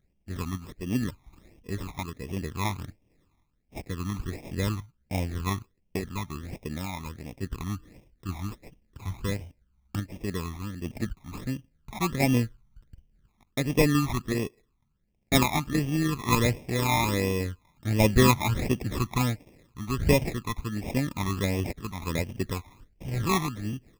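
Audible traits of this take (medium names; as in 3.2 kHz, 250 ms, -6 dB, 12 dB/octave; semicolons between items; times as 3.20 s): random-step tremolo; aliases and images of a low sample rate 1.5 kHz, jitter 0%; phasing stages 12, 1.4 Hz, lowest notch 490–1400 Hz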